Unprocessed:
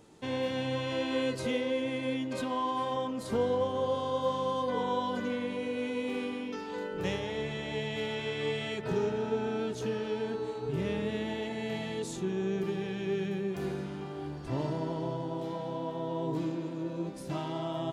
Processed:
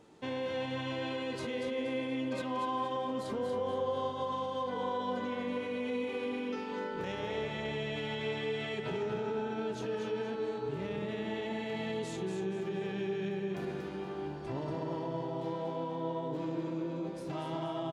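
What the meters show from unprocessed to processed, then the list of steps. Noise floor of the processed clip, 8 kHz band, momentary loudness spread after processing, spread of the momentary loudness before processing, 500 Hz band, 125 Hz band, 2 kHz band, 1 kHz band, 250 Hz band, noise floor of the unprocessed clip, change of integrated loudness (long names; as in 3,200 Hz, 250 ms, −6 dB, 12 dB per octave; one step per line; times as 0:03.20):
−40 dBFS, −6.0 dB, 3 LU, 6 LU, −2.5 dB, −4.0 dB, −2.0 dB, −2.0 dB, −3.0 dB, −40 dBFS, −3.0 dB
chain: high-shelf EQ 6,000 Hz −11 dB
brickwall limiter −27.5 dBFS, peak gain reduction 9 dB
low-shelf EQ 150 Hz −7.5 dB
on a send: repeating echo 237 ms, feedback 37%, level −6 dB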